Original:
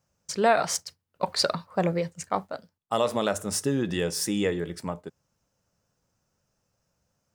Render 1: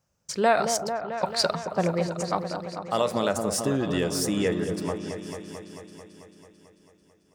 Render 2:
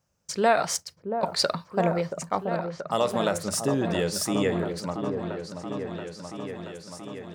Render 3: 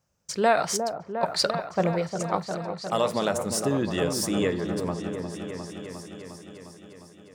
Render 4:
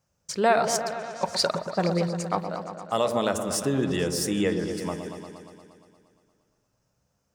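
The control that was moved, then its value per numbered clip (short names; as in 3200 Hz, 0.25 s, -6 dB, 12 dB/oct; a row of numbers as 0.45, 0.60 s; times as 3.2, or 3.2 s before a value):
repeats that get brighter, time: 0.221, 0.679, 0.355, 0.117 s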